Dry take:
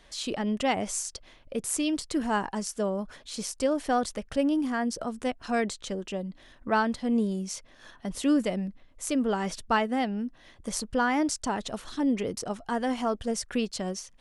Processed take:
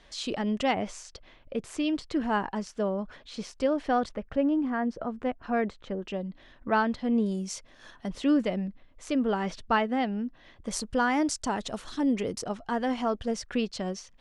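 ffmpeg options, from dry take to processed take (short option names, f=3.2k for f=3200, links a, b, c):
-af "asetnsamples=n=441:p=0,asendcmd='0.71 lowpass f 3600;4.09 lowpass f 1900;6.03 lowpass f 4000;7.26 lowpass f 9000;8.08 lowpass f 4100;10.71 lowpass f 9500;12.44 lowpass f 5200',lowpass=6.7k"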